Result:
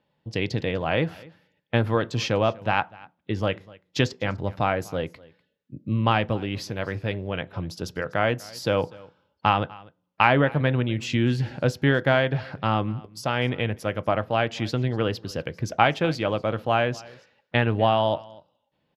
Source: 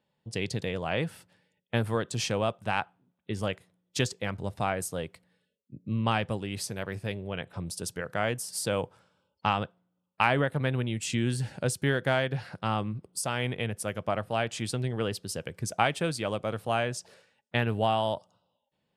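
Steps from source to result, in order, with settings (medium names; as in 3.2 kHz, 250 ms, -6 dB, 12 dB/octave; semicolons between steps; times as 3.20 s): boxcar filter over 5 samples; delay 247 ms -22.5 dB; on a send at -14.5 dB: reverberation RT60 0.35 s, pre-delay 3 ms; on the sum: trim +6 dB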